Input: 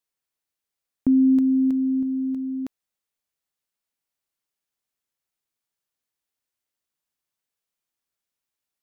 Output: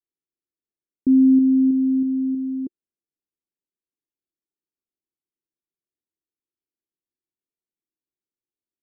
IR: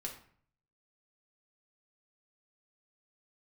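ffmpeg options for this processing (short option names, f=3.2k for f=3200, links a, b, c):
-af "lowpass=f=350:t=q:w=3.6,adynamicequalizer=threshold=0.0708:dfrequency=200:dqfactor=0.99:tfrequency=200:tqfactor=0.99:attack=5:release=100:ratio=0.375:range=2.5:mode=boostabove:tftype=bell,volume=-7dB"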